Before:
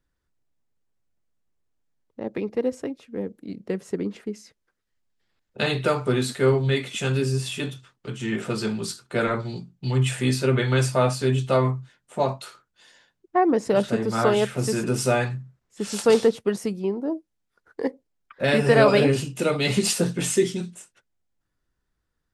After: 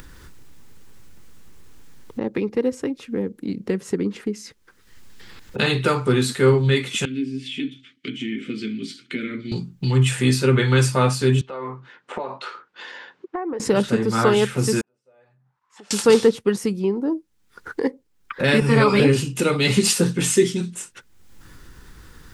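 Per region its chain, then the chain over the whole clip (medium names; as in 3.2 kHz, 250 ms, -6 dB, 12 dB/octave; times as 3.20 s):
7.05–9.52 s: vowel filter i + tape noise reduction on one side only encoder only
11.41–13.60 s: high-pass 460 Hz + tape spacing loss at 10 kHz 35 dB + compression 3:1, threshold -36 dBFS
14.81–15.91 s: amplifier tone stack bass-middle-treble 5-5-5 + compression 4:1, threshold -55 dBFS + auto-wah 340–1200 Hz, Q 8, down, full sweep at -46.5 dBFS
18.60–19.00 s: comb 0.9 ms, depth 40% + three-phase chorus
whole clip: peaking EQ 650 Hz -11.5 dB 0.35 oct; upward compressor, threshold -24 dBFS; trim +4.5 dB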